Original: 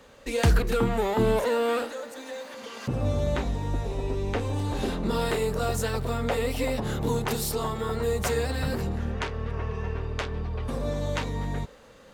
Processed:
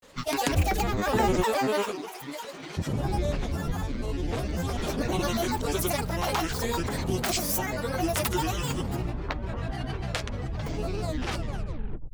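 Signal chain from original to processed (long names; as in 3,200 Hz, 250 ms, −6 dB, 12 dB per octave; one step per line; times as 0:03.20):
turntable brake at the end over 1.17 s
high-shelf EQ 4,000 Hz +8 dB
granular cloud, pitch spread up and down by 12 semitones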